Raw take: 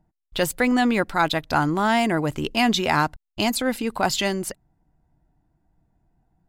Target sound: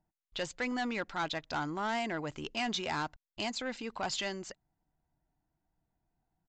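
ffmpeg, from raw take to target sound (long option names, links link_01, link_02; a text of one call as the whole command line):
ffmpeg -i in.wav -af "lowshelf=frequency=450:gain=-8,aresample=16000,asoftclip=type=tanh:threshold=-18.5dB,aresample=44100,volume=-8.5dB" out.wav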